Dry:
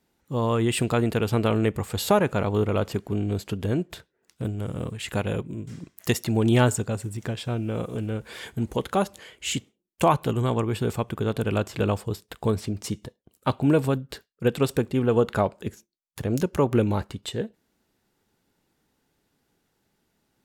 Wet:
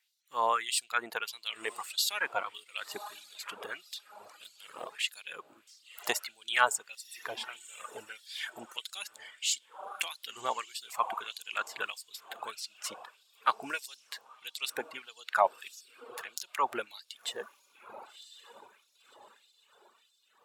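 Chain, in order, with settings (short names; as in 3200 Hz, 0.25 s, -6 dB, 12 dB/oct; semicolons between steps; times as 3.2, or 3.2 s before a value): diffused feedback echo 1.064 s, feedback 43%, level -11.5 dB; reverb removal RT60 1.9 s; LFO high-pass sine 1.6 Hz 770–4600 Hz; gain -2.5 dB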